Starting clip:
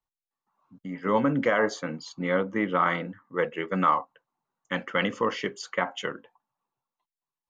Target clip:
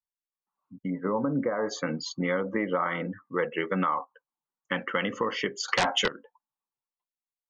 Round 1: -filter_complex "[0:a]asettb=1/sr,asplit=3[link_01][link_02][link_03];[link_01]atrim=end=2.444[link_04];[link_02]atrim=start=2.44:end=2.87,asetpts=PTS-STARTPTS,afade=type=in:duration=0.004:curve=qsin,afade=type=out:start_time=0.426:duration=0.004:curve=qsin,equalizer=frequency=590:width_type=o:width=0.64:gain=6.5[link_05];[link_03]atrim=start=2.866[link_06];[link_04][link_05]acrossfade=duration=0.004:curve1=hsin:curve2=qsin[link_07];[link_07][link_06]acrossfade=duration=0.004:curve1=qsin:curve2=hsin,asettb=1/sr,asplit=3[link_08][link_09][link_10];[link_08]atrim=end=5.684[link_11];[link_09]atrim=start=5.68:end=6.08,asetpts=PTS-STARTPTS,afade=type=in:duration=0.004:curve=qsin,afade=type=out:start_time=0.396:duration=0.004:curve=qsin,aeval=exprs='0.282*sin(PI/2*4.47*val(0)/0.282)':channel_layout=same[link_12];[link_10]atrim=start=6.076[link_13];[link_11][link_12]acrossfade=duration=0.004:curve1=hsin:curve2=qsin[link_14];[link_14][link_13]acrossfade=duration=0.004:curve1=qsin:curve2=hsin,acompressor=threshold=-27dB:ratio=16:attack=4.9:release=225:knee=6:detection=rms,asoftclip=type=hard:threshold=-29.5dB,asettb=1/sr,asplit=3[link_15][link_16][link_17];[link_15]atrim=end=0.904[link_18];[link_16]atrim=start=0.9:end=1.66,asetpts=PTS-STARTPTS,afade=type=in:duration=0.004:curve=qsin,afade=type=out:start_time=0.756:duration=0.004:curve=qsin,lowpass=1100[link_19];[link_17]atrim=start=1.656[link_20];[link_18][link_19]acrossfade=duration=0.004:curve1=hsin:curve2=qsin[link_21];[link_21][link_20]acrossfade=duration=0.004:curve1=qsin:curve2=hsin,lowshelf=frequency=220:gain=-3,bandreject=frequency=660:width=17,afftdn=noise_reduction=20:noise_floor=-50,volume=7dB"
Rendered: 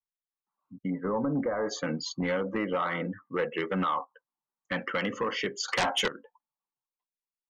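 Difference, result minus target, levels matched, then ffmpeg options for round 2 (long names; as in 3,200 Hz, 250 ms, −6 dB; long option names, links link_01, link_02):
hard clipping: distortion +37 dB
-filter_complex "[0:a]asettb=1/sr,asplit=3[link_01][link_02][link_03];[link_01]atrim=end=2.444[link_04];[link_02]atrim=start=2.44:end=2.87,asetpts=PTS-STARTPTS,afade=type=in:duration=0.004:curve=qsin,afade=type=out:start_time=0.426:duration=0.004:curve=qsin,equalizer=frequency=590:width_type=o:width=0.64:gain=6.5[link_05];[link_03]atrim=start=2.866[link_06];[link_04][link_05]acrossfade=duration=0.004:curve1=hsin:curve2=qsin[link_07];[link_07][link_06]acrossfade=duration=0.004:curve1=qsin:curve2=hsin,asettb=1/sr,asplit=3[link_08][link_09][link_10];[link_08]atrim=end=5.684[link_11];[link_09]atrim=start=5.68:end=6.08,asetpts=PTS-STARTPTS,afade=type=in:duration=0.004:curve=qsin,afade=type=out:start_time=0.396:duration=0.004:curve=qsin,aeval=exprs='0.282*sin(PI/2*4.47*val(0)/0.282)':channel_layout=same[link_12];[link_10]atrim=start=6.076[link_13];[link_11][link_12]acrossfade=duration=0.004:curve1=hsin:curve2=qsin[link_14];[link_14][link_13]acrossfade=duration=0.004:curve1=qsin:curve2=hsin,acompressor=threshold=-27dB:ratio=16:attack=4.9:release=225:knee=6:detection=rms,asoftclip=type=hard:threshold=-18dB,asettb=1/sr,asplit=3[link_15][link_16][link_17];[link_15]atrim=end=0.904[link_18];[link_16]atrim=start=0.9:end=1.66,asetpts=PTS-STARTPTS,afade=type=in:duration=0.004:curve=qsin,afade=type=out:start_time=0.756:duration=0.004:curve=qsin,lowpass=1100[link_19];[link_17]atrim=start=1.656[link_20];[link_18][link_19]acrossfade=duration=0.004:curve1=hsin:curve2=qsin[link_21];[link_21][link_20]acrossfade=duration=0.004:curve1=qsin:curve2=hsin,lowshelf=frequency=220:gain=-3,bandreject=frequency=660:width=17,afftdn=noise_reduction=20:noise_floor=-50,volume=7dB"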